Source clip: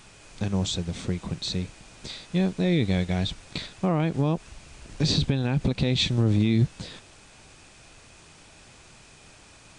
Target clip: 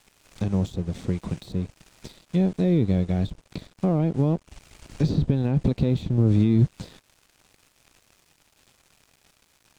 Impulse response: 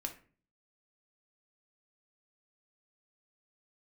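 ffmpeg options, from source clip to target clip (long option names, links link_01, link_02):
-filter_complex "[0:a]acrossover=split=710[link_01][link_02];[link_02]acompressor=threshold=-45dB:ratio=20[link_03];[link_01][link_03]amix=inputs=2:normalize=0,aeval=exprs='sgn(val(0))*max(abs(val(0))-0.00422,0)':channel_layout=same,volume=3dB"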